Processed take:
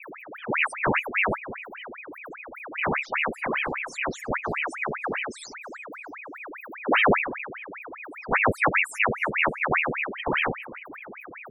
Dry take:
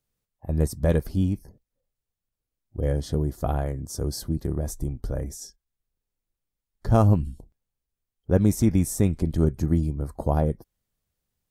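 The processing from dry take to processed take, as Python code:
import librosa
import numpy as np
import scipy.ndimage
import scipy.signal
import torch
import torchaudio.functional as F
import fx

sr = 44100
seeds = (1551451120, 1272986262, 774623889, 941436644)

p1 = x + 0.5 * 10.0 ** (-30.0 / 20.0) * np.sign(x)
p2 = fx.spec_topn(p1, sr, count=8)
p3 = p2 + fx.echo_feedback(p2, sr, ms=312, feedback_pct=36, wet_db=-21.5, dry=0)
y = fx.ring_lfo(p3, sr, carrier_hz=1400.0, swing_pct=80, hz=5.0)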